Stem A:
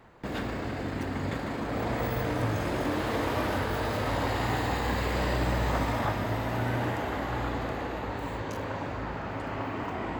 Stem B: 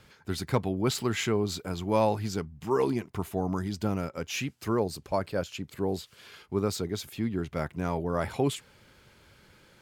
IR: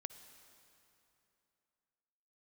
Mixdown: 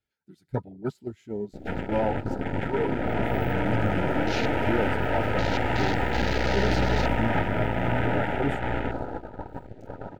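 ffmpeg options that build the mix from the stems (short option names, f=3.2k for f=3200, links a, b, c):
-filter_complex "[0:a]aeval=exprs='0.2*(cos(1*acos(clip(val(0)/0.2,-1,1)))-cos(1*PI/2))+0.00447*(cos(3*acos(clip(val(0)/0.2,-1,1)))-cos(3*PI/2))+0.02*(cos(4*acos(clip(val(0)/0.2,-1,1)))-cos(4*PI/2))+0.0447*(cos(6*acos(clip(val(0)/0.2,-1,1)))-cos(6*PI/2))+0.0562*(cos(8*acos(clip(val(0)/0.2,-1,1)))-cos(8*PI/2))':c=same,adelay=1300,volume=2.5dB,asplit=2[a][b];[b]volume=-23.5dB[c];[1:a]flanger=delay=2.8:depth=4.3:regen=-31:speed=0.87:shape=sinusoidal,volume=-0.5dB,asplit=2[d][e];[e]volume=-4.5dB[f];[2:a]atrim=start_sample=2205[g];[c][f]amix=inputs=2:normalize=0[h];[h][g]afir=irnorm=-1:irlink=0[i];[a][d][i]amix=inputs=3:normalize=0,agate=range=-12dB:threshold=-26dB:ratio=16:detection=peak,afwtdn=0.0178,asuperstop=centerf=1100:order=20:qfactor=4.4"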